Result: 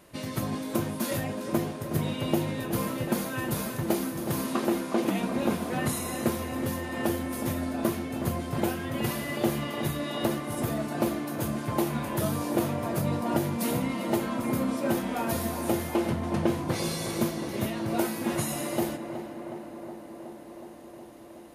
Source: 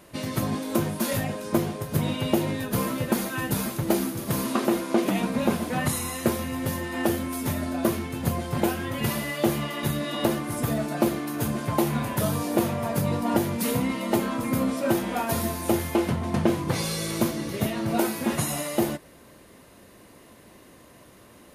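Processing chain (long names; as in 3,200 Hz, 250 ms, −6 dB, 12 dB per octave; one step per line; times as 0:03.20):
tape delay 368 ms, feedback 87%, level −8 dB, low-pass 2,000 Hz
level −4 dB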